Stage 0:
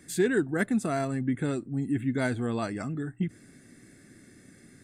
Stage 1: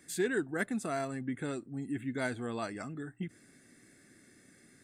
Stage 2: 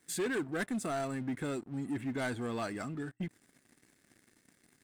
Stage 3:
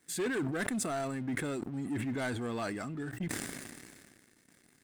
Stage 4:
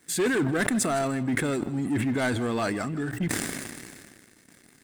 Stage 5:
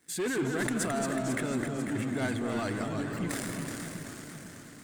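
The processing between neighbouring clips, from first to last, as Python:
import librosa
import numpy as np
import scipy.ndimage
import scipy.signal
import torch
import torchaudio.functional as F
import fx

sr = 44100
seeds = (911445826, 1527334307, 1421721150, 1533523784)

y1 = fx.low_shelf(x, sr, hz=270.0, db=-9.0)
y1 = F.gain(torch.from_numpy(y1), -3.5).numpy()
y2 = fx.leveller(y1, sr, passes=3)
y2 = F.gain(torch.from_numpy(y2), -9.0).numpy()
y3 = fx.sustainer(y2, sr, db_per_s=30.0)
y4 = y3 + 10.0 ** (-17.0 / 20.0) * np.pad(y3, (int(158 * sr / 1000.0), 0))[:len(y3)]
y4 = F.gain(torch.from_numpy(y4), 8.5).numpy()
y5 = fx.echo_pitch(y4, sr, ms=177, semitones=-1, count=3, db_per_echo=-6.0)
y5 = fx.echo_alternate(y5, sr, ms=247, hz=1100.0, feedback_pct=73, wet_db=-7)
y5 = F.gain(torch.from_numpy(y5), -7.0).numpy()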